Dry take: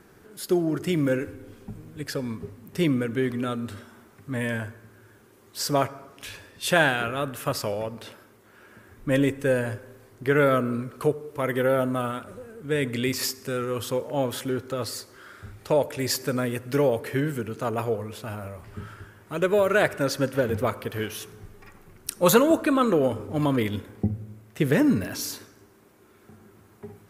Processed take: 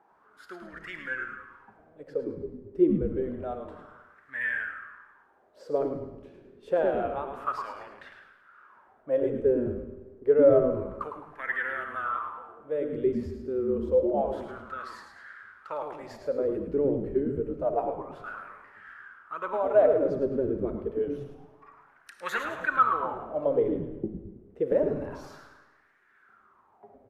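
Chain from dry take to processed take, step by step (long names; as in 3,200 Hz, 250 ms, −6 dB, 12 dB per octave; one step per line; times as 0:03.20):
LFO wah 0.28 Hz 350–1,800 Hz, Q 7.3
echo with shifted repeats 107 ms, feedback 39%, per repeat −150 Hz, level −7 dB
comb and all-pass reverb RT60 1.1 s, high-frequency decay 0.9×, pre-delay 15 ms, DRR 9 dB
level +6.5 dB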